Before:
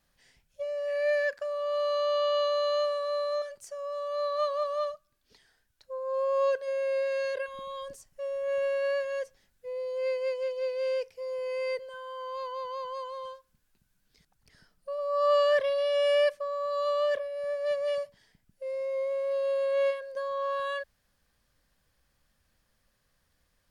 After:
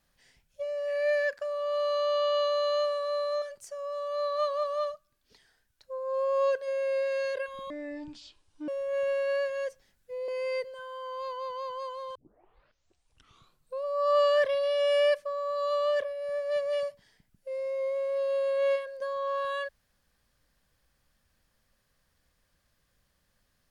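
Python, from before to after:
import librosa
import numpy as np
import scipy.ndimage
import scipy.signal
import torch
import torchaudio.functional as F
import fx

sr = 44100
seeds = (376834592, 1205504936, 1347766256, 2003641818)

y = fx.edit(x, sr, fx.speed_span(start_s=7.7, length_s=0.53, speed=0.54),
    fx.cut(start_s=9.83, length_s=1.6),
    fx.tape_start(start_s=13.3, length_s=1.71), tone=tone)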